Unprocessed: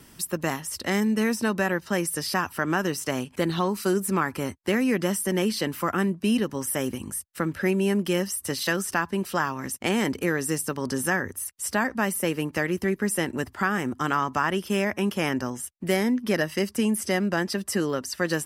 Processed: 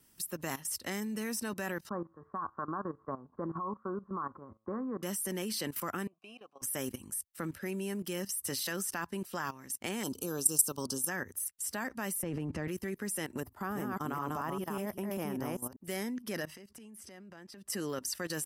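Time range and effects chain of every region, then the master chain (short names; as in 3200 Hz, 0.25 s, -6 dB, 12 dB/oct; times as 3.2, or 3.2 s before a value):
1.89–5.03 steep low-pass 1400 Hz 48 dB/oct + resonator 110 Hz, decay 0.3 s, mix 40% + small resonant body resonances 1100 Hz, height 16 dB, ringing for 30 ms
6.07–6.62 vowel filter a + low shelf 380 Hz -3.5 dB + mismatched tape noise reduction encoder only
10.03–11.09 Butterworth band-stop 2000 Hz, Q 1.1 + high shelf 2200 Hz +6.5 dB
12.23–12.68 LPF 8400 Hz + tilt -3.5 dB/oct + transient shaper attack -1 dB, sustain +10 dB
13.4–15.87 reverse delay 0.197 s, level -2.5 dB + band shelf 3700 Hz -10.5 dB 2.9 oct
16.45–17.7 LPF 3900 Hz 6 dB/oct + compressor 20:1, threshold -36 dBFS
whole clip: high shelf 6200 Hz +11 dB; level quantiser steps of 15 dB; gain -6 dB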